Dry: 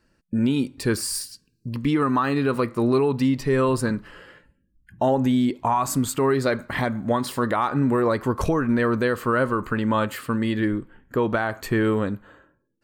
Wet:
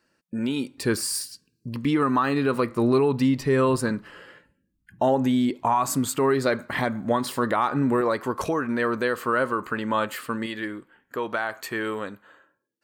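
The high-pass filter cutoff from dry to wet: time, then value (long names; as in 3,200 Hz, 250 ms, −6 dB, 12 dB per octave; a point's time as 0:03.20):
high-pass filter 6 dB per octave
390 Hz
from 0:00.80 140 Hz
from 0:02.70 59 Hz
from 0:03.76 160 Hz
from 0:08.01 400 Hz
from 0:10.46 880 Hz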